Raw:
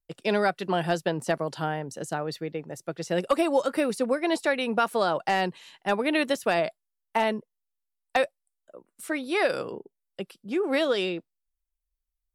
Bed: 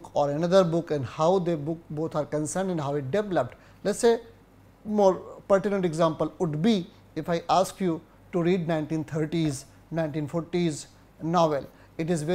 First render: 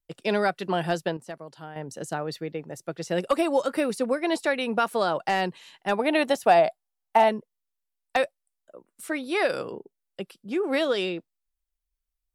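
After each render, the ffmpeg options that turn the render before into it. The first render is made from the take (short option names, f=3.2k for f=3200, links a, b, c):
-filter_complex "[0:a]asettb=1/sr,asplit=3[a][b][c];[a]atrim=end=5.994[d];[b]atrim=start=5.99:end=7.29,asetpts=PTS-STARTPTS,afade=t=in:d=0.004:c=qsin,afade=t=out:st=1.296:d=0.004:c=qsin,equalizer=f=760:t=o:w=0.42:g=13.5[e];[c]atrim=start=7.286[f];[d][e]acrossfade=d=0.004:c1=hsin:c2=qsin[g];[g][f]acrossfade=d=0.004:c1=qsin:c2=hsin,asplit=3[h][i][j];[h]atrim=end=1.17,asetpts=PTS-STARTPTS,afade=t=out:st=0.69:d=0.48:c=log:silence=0.251189[k];[i]atrim=start=1.17:end=1.76,asetpts=PTS-STARTPTS,volume=-12dB[l];[j]atrim=start=1.76,asetpts=PTS-STARTPTS,afade=t=in:d=0.48:c=log:silence=0.251189[m];[k][l][m]concat=n=3:v=0:a=1"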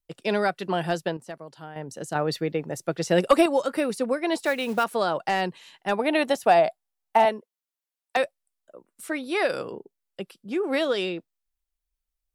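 -filter_complex "[0:a]asettb=1/sr,asplit=3[a][b][c];[a]atrim=end=2.154[d];[b]atrim=start=2.15:end=3.46,asetpts=PTS-STARTPTS,afade=t=in:d=0.004:c=qsin,afade=t=out:st=1.306:d=0.004:c=qsin,acontrast=51[e];[c]atrim=start=3.456[f];[d][e]acrossfade=d=0.004:c1=hsin:c2=qsin[g];[g][f]acrossfade=d=0.004:c1=qsin:c2=hsin,asettb=1/sr,asplit=3[h][i][j];[h]atrim=end=4.374[k];[i]atrim=start=4.37:end=4.84,asetpts=PTS-STARTPTS,afade=t=in:d=0.004:c=qsin,afade=t=out:st=0.466:d=0.004:c=qsin,acrusher=bits=5:mode=log:mix=0:aa=0.000001[l];[j]atrim=start=4.836[m];[k][l]acrossfade=d=0.004:c1=hsin:c2=qsin[n];[n][m]acrossfade=d=0.004:c1=qsin:c2=hsin,asettb=1/sr,asplit=3[o][p][q];[o]atrim=end=7.254[r];[p]atrim=start=7.25:end=8.17,asetpts=PTS-STARTPTS,afade=t=in:d=0.004:c=qsin,afade=t=out:st=0.916:d=0.004:c=qsin,highpass=290[s];[q]atrim=start=8.166[t];[r][s]acrossfade=d=0.004:c1=hsin:c2=qsin[u];[u][t]acrossfade=d=0.004:c1=qsin:c2=hsin"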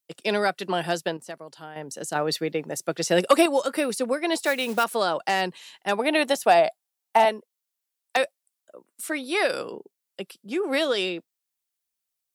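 -af "highpass=180,highshelf=f=3.1k:g=7.5"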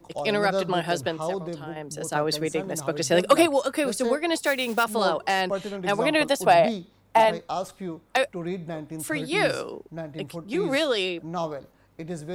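-filter_complex "[1:a]volume=-7.5dB[a];[0:a][a]amix=inputs=2:normalize=0"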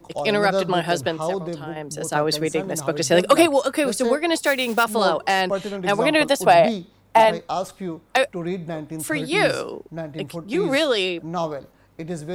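-af "volume=4dB,alimiter=limit=-3dB:level=0:latency=1"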